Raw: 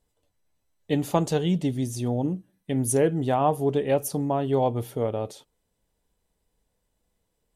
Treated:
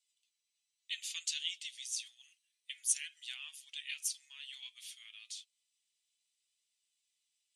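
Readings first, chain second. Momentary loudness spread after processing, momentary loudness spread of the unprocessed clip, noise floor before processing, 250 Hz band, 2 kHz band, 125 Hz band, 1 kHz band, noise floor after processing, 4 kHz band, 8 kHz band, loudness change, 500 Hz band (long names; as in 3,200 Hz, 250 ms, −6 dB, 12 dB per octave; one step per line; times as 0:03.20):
15 LU, 7 LU, −76 dBFS, below −40 dB, −5.5 dB, below −40 dB, below −40 dB, below −85 dBFS, +2.0 dB, −1.5 dB, −14.0 dB, below −40 dB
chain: low-pass filter 8,800 Hz 24 dB per octave
flanger 0.3 Hz, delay 1.3 ms, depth 4.4 ms, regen +65%
Butterworth high-pass 2,400 Hz 36 dB per octave
level +6.5 dB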